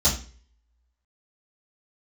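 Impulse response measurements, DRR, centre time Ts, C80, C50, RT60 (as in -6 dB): -10.0 dB, 24 ms, 14.0 dB, 9.0 dB, 0.40 s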